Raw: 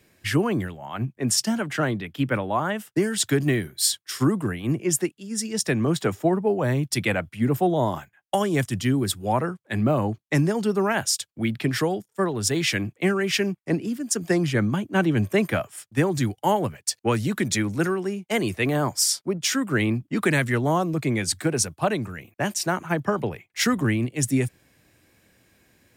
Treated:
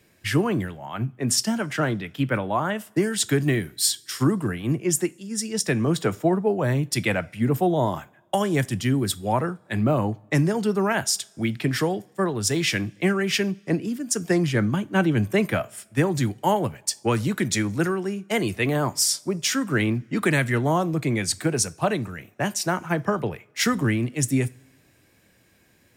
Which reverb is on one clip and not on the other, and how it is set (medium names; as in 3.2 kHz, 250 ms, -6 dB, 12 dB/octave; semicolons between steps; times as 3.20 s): two-slope reverb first 0.29 s, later 1.5 s, from -21 dB, DRR 14.5 dB